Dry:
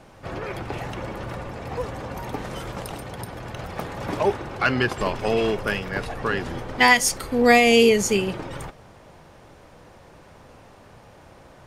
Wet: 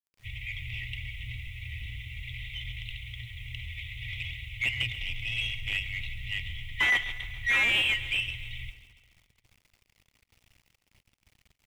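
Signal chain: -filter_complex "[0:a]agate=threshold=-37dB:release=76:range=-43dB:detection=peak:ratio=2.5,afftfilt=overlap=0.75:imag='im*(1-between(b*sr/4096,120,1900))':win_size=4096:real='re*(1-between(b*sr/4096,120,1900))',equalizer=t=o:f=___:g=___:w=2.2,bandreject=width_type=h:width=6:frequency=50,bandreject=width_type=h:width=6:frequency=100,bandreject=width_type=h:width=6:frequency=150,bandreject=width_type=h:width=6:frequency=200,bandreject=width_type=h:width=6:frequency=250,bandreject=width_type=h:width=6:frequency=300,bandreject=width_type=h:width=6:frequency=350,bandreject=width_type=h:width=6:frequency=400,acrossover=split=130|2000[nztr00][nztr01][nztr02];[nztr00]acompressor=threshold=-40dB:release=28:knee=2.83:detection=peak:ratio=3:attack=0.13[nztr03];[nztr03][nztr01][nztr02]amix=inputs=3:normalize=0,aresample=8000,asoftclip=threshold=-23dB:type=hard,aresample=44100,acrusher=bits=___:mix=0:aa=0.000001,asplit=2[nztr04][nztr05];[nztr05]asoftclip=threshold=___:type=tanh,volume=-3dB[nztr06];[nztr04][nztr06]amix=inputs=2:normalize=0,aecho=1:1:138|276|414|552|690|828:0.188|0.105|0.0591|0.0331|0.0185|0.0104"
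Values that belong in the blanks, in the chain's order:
180, -7, 10, -34.5dB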